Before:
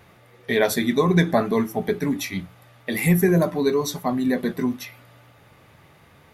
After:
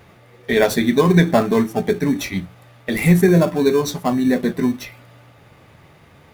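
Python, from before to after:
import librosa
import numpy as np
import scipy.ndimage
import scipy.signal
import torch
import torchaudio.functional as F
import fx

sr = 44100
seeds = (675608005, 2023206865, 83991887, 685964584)

p1 = scipy.signal.medfilt(x, 3)
p2 = fx.sample_hold(p1, sr, seeds[0], rate_hz=2000.0, jitter_pct=0)
p3 = p1 + (p2 * librosa.db_to_amplitude(-11.0))
y = p3 * librosa.db_to_amplitude(3.0)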